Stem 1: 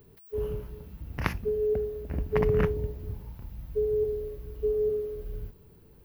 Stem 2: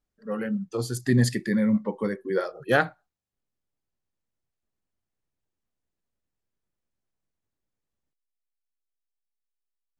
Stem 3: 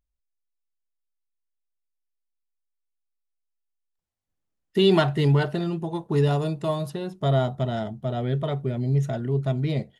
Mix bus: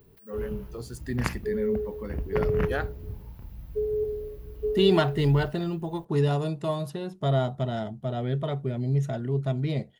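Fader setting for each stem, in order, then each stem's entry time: -1.0 dB, -10.0 dB, -2.5 dB; 0.00 s, 0.00 s, 0.00 s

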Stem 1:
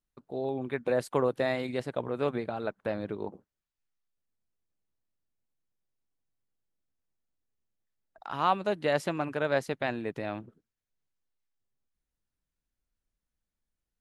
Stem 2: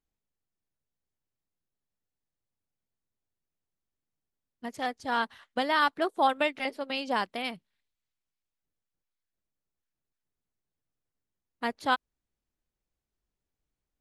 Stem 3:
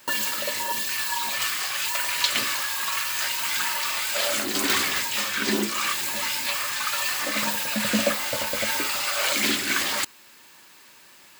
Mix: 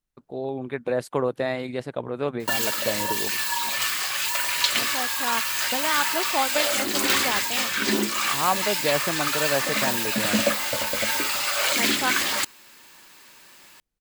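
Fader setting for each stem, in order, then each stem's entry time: +2.5 dB, -0.5 dB, +1.0 dB; 0.00 s, 0.15 s, 2.40 s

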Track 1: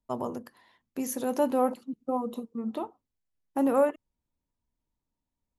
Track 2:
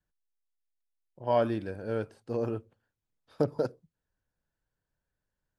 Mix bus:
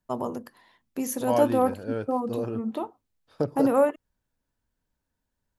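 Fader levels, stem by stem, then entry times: +2.5 dB, +0.5 dB; 0.00 s, 0.00 s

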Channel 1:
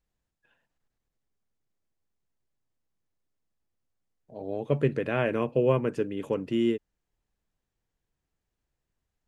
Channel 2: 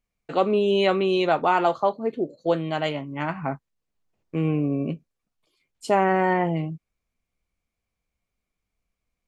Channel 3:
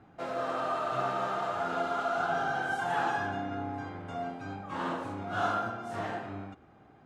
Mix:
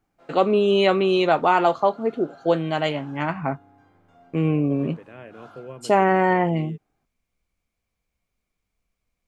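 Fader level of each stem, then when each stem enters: -15.5 dB, +2.5 dB, -18.0 dB; 0.00 s, 0.00 s, 0.00 s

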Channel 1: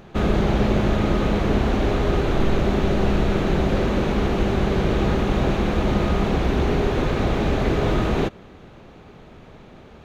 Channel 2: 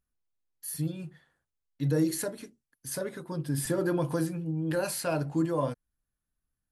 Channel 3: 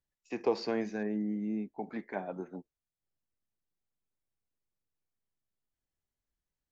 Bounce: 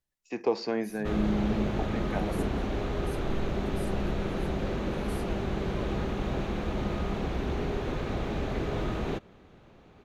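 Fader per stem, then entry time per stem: -10.5 dB, -16.0 dB, +2.5 dB; 0.90 s, 0.20 s, 0.00 s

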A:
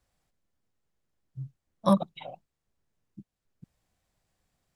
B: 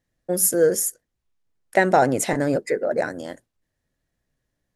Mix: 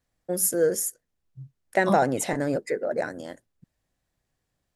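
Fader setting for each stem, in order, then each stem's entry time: -4.0 dB, -4.5 dB; 0.00 s, 0.00 s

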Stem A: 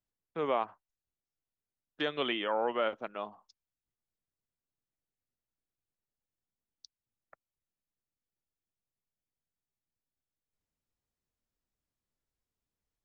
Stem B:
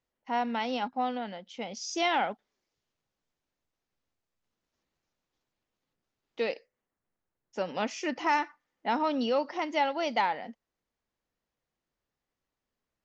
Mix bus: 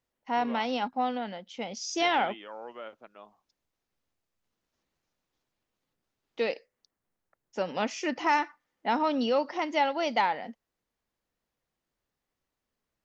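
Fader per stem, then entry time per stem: -11.5 dB, +1.5 dB; 0.00 s, 0.00 s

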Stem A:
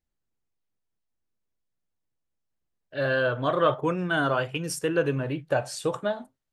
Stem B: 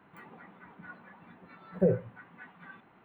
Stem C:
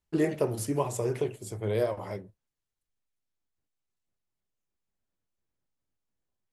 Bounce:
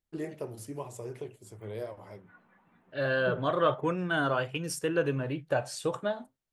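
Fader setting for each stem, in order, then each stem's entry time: -3.5 dB, -11.0 dB, -10.5 dB; 0.00 s, 1.45 s, 0.00 s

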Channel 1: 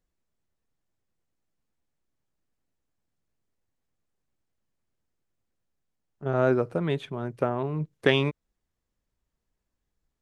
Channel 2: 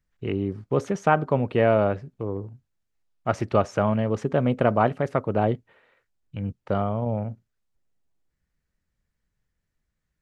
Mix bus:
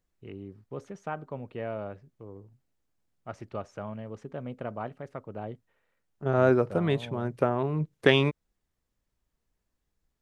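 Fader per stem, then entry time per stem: +1.0 dB, -15.5 dB; 0.00 s, 0.00 s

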